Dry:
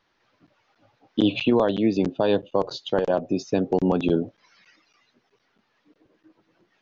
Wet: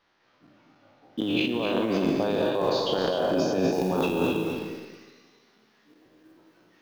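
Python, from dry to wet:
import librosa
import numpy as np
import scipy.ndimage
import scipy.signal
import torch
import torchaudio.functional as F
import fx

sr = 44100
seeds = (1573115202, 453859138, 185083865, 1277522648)

y = fx.spec_trails(x, sr, decay_s=1.3)
y = fx.low_shelf(y, sr, hz=94.0, db=-8.5)
y = fx.echo_multitap(y, sr, ms=(204, 217), db=(-12.0, -14.5))
y = fx.over_compress(y, sr, threshold_db=-22.0, ratio=-1.0)
y = fx.quant_float(y, sr, bits=4)
y = fx.high_shelf(y, sr, hz=5900.0, db=fx.steps((0.0, -3.5), (3.72, 8.5)))
y = y + 10.0 ** (-6.5 / 20.0) * np.pad(y, (int(259 * sr / 1000.0), 0))[:len(y)]
y = y * 10.0 ** (-3.5 / 20.0)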